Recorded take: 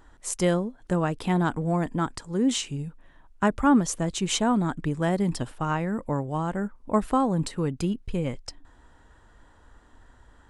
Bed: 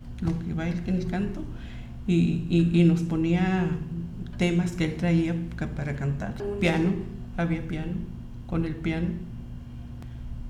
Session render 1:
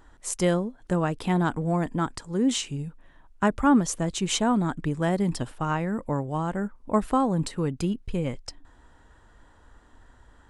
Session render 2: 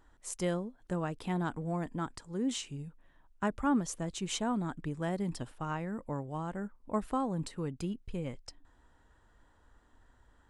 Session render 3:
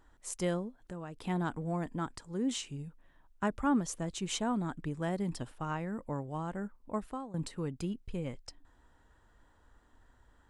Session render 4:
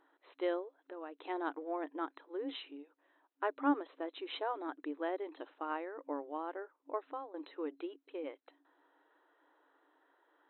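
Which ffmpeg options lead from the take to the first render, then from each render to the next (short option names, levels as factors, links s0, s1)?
-af anull
-af "volume=0.335"
-filter_complex "[0:a]asettb=1/sr,asplit=3[s0][s1][s2];[s0]atrim=end=0.804[s3];[s1]atrim=start=0.8:end=1.25,asetpts=PTS-STARTPTS,afade=t=in:d=0.004:c=qsin,afade=t=out:st=0.446:d=0.004:c=qsin,acompressor=threshold=0.00562:ratio=2:attack=3.2:release=140:knee=1:detection=peak[s4];[s2]atrim=start=1.246[s5];[s3][s4]acrossfade=d=0.004:c1=hsin:c2=qsin[s6];[s6][s5]acrossfade=d=0.004:c1=qsin:c2=hsin,asplit=2[s7][s8];[s7]atrim=end=7.34,asetpts=PTS-STARTPTS,afade=t=out:st=6.76:d=0.58:silence=0.158489[s9];[s8]atrim=start=7.34,asetpts=PTS-STARTPTS,afade=t=in:d=0.004:c=hsin:silence=0.158489[s10];[s9][s10]concat=n=2:v=0:a=1"
-af "afftfilt=real='re*between(b*sr/4096,270,4100)':imag='im*between(b*sr/4096,270,4100)':win_size=4096:overlap=0.75,highshelf=f=3200:g=-9"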